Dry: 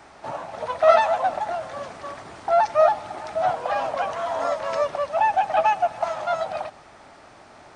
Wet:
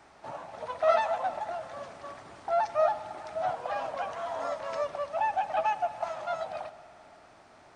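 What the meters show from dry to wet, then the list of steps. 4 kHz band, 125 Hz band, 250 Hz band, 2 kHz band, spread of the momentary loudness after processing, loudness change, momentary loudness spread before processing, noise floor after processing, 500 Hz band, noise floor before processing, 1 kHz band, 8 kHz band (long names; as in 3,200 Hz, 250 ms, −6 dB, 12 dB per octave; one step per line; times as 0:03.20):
−8.5 dB, −8.5 dB, −8.5 dB, −8.5 dB, 16 LU, −8.5 dB, 17 LU, −56 dBFS, −8.5 dB, −49 dBFS, −8.5 dB, can't be measured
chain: spring reverb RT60 3.2 s, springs 54 ms, chirp 35 ms, DRR 15.5 dB
level −8.5 dB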